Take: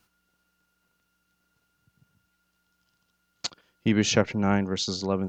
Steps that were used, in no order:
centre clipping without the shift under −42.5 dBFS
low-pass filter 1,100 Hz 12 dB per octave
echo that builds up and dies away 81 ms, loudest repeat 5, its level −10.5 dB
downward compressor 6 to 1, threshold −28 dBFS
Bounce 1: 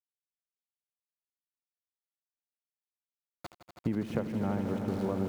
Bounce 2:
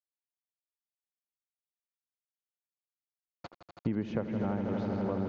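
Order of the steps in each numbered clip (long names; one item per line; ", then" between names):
low-pass filter, then centre clipping without the shift, then downward compressor, then echo that builds up and dies away
echo that builds up and dies away, then centre clipping without the shift, then downward compressor, then low-pass filter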